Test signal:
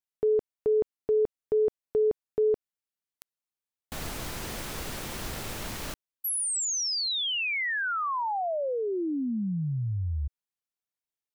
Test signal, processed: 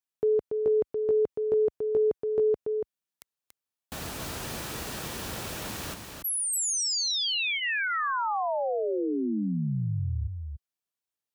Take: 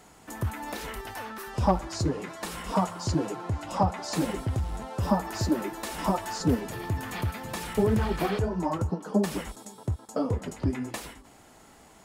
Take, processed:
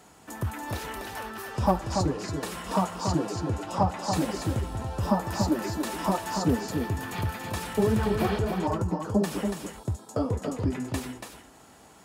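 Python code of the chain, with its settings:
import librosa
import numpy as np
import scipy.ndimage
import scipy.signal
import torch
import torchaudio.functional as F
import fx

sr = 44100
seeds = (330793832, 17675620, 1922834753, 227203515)

y = scipy.signal.sosfilt(scipy.signal.butter(2, 59.0, 'highpass', fs=sr, output='sos'), x)
y = fx.notch(y, sr, hz=2100.0, q=17.0)
y = y + 10.0 ** (-5.5 / 20.0) * np.pad(y, (int(284 * sr / 1000.0), 0))[:len(y)]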